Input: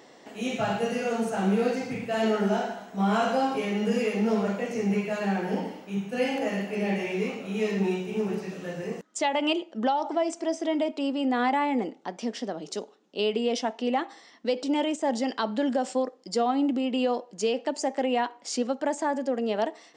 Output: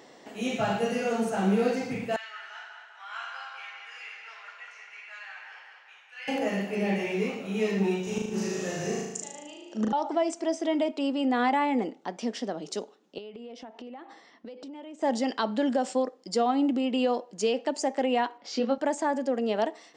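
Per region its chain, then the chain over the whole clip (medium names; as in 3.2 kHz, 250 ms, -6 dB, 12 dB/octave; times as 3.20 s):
2.16–6.28 s: high-pass 1.4 kHz 24 dB/octave + tape spacing loss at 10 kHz 23 dB + filtered feedback delay 198 ms, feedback 60%, low-pass 3.3 kHz, level -5 dB
8.03–9.93 s: peaking EQ 6.4 kHz +13.5 dB 0.82 oct + inverted gate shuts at -19 dBFS, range -25 dB + flutter echo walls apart 6.4 m, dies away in 0.93 s
13.18–15.02 s: low-pass 2.3 kHz 6 dB/octave + compression 12:1, threshold -39 dBFS
18.38–18.78 s: low-pass 4.8 kHz 24 dB/octave + doubling 22 ms -4.5 dB
whole clip: none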